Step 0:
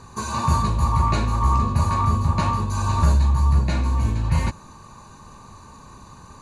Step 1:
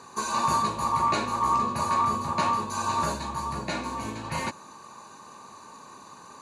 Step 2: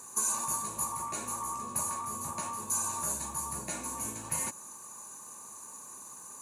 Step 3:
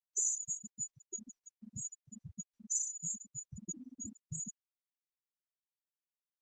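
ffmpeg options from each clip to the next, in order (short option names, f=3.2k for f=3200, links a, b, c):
-af "highpass=300"
-af "acompressor=threshold=-28dB:ratio=4,aexciter=amount=14.5:drive=4.8:freq=6.6k,volume=-8dB"
-af "asuperstop=centerf=1000:order=8:qfactor=0.88,afftfilt=real='re*gte(hypot(re,im),0.0501)':imag='im*gte(hypot(re,im),0.0501)':win_size=1024:overlap=0.75,volume=2.5dB" -ar 48000 -c:a libopus -b:a 12k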